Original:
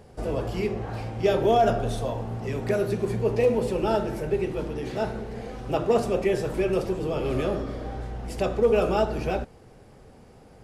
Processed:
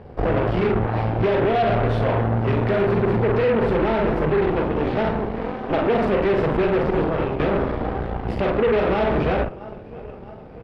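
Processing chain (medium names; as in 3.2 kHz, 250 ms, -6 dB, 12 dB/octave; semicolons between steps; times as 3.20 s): 5.38–5.83 s: high-pass 190 Hz 24 dB/octave; 6.90–7.40 s: compressor with a negative ratio -30 dBFS, ratio -0.5; doubling 45 ms -5 dB; feedback delay 652 ms, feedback 57%, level -23 dB; peak limiter -18.5 dBFS, peak gain reduction 9.5 dB; Chebyshev shaper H 6 -12 dB, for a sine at -18.5 dBFS; saturation -17 dBFS, distortion -23 dB; distance through air 390 m; trim +8.5 dB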